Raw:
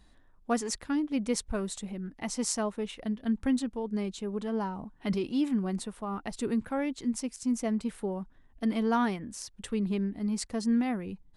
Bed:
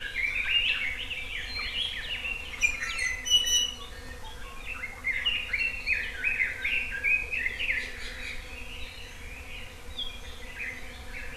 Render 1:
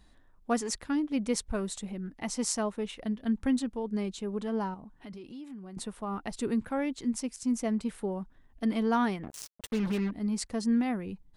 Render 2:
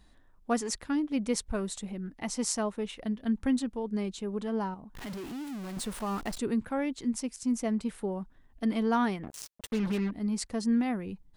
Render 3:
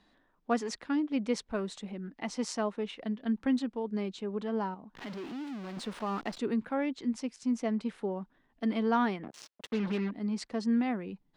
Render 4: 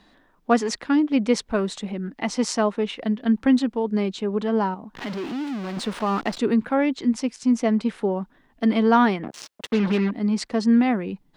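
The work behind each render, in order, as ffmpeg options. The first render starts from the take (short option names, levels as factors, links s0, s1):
-filter_complex "[0:a]asettb=1/sr,asplit=3[s0][s1][s2];[s0]atrim=end=4.744[s3];[s1]atrim=start=4.74:end=5.77,asetpts=PTS-STARTPTS,afade=t=in:d=0.004:c=qsin,afade=t=out:st=1.026:d=0.004:c=qsin,acompressor=threshold=0.00631:ratio=4:attack=3.2:release=140:knee=1:detection=peak[s4];[s2]atrim=start=5.766[s5];[s3][s4]acrossfade=d=0.004:c1=hsin:c2=qsin[s6];[s6][s5]acrossfade=d=0.004:c1=qsin:c2=hsin,asettb=1/sr,asplit=3[s7][s8][s9];[s7]atrim=end=9.234[s10];[s8]atrim=start=9.23:end=10.11,asetpts=PTS-STARTPTS,afade=t=in:d=0.004:c=qsin,afade=t=out:st=0.876:d=0.004:c=qsin,acrusher=bits=5:mix=0:aa=0.5[s11];[s9]atrim=start=10.106[s12];[s10][s11]acrossfade=d=0.004:c1=hsin:c2=qsin[s13];[s13][s12]acrossfade=d=0.004:c1=qsin:c2=hsin"
-filter_complex "[0:a]asettb=1/sr,asplit=3[s0][s1][s2];[s0]atrim=end=4.954[s3];[s1]atrim=start=4.95:end=6.38,asetpts=PTS-STARTPTS,afade=t=in:d=0.004:c=qsin,afade=t=out:st=1.426:d=0.004:c=qsin,aeval=exprs='val(0)+0.5*0.0133*sgn(val(0))':c=same[s4];[s2]atrim=start=6.376[s5];[s3][s4]acrossfade=d=0.004:c1=hsin:c2=qsin[s6];[s6][s5]acrossfade=d=0.004:c1=qsin:c2=hsin"
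-filter_complex "[0:a]acrossover=split=160 5400:gain=0.141 1 0.112[s0][s1][s2];[s0][s1][s2]amix=inputs=3:normalize=0"
-af "volume=3.35"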